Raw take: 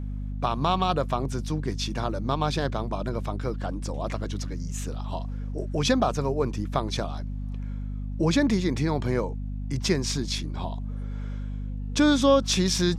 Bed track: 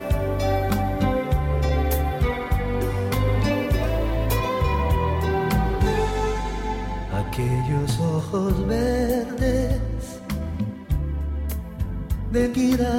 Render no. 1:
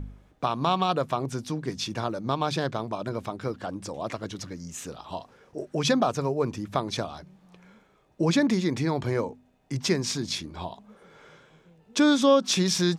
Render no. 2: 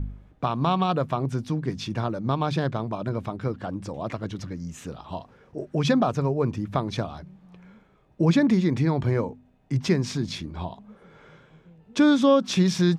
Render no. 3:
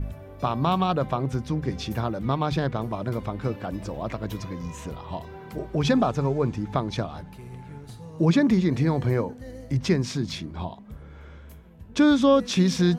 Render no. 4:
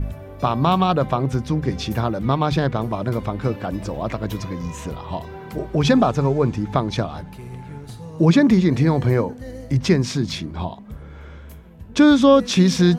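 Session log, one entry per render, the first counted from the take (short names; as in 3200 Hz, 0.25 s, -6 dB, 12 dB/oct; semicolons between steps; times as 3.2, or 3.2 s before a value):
de-hum 50 Hz, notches 5
tone controls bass +7 dB, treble -8 dB
add bed track -19 dB
gain +5.5 dB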